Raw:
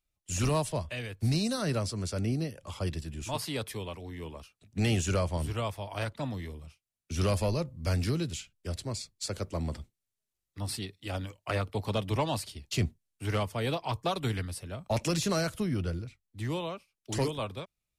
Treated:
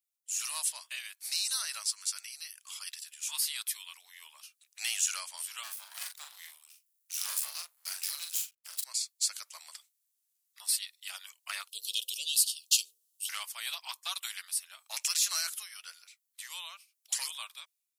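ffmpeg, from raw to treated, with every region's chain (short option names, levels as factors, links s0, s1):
-filter_complex "[0:a]asettb=1/sr,asplit=3[s0][s1][s2];[s0]atrim=end=1.824[s3];[s1]atrim=start=1.82:end=3.96,asetpts=PTS-STARTPTS,afade=t=in:d=0.004:c=qsin,afade=t=out:st=2.136:d=0.004:c=qsin,equalizer=f=630:w=1.7:g=-11,bandreject=f=350:w=8.5[s4];[s2]atrim=start=3.956[s5];[s3][s4]acrossfade=d=0.004:c1=hsin:c2=qsin[s6];[s6][s5]acrossfade=d=0.004:c1=qsin:c2=hsin,asettb=1/sr,asplit=3[s7][s8][s9];[s7]atrim=end=5.634[s10];[s8]atrim=start=5.63:end=8.84,asetpts=PTS-STARTPTS,afade=t=in:d=0.004:c=qsin,afade=t=out:st=3.206:d=0.004:c=qsin,aeval=exprs='max(val(0),0)':c=same,highshelf=f=9000:g=8,asplit=2[s11][s12];[s12]adelay=41,volume=0.562[s13];[s11][s13]amix=inputs=2:normalize=0,atrim=end_sample=141561[s14];[s9]atrim=start=8.836[s15];[s10][s14]acrossfade=d=0.004:c1=hsin:c2=qsin[s16];[s16][s15]acrossfade=d=0.004:c1=qsin:c2=hsin,asettb=1/sr,asplit=3[s17][s18][s19];[s17]atrim=end=11.684[s20];[s18]atrim=start=11.68:end=13.29,asetpts=PTS-STARTPTS,afade=t=in:d=0.004:c=qsin,afade=t=out:st=1.606:d=0.004:c=qsin,bandreject=f=65.21:t=h:w=4,bandreject=f=130.42:t=h:w=4,bandreject=f=195.63:t=h:w=4,bandreject=f=260.84:t=h:w=4,bandreject=f=326.05:t=h:w=4,bandreject=f=391.26:t=h:w=4,bandreject=f=456.47:t=h:w=4,bandreject=f=521.68:t=h:w=4,acontrast=48,asuperstop=centerf=1200:order=20:qfactor=0.55[s21];[s19]atrim=start=13.286[s22];[s20][s21]acrossfade=d=0.004:c1=hsin:c2=qsin[s23];[s23][s22]acrossfade=d=0.004:c1=qsin:c2=hsin,highpass=f=940:w=0.5412,highpass=f=940:w=1.3066,aderivative,dynaudnorm=f=130:g=7:m=2.82"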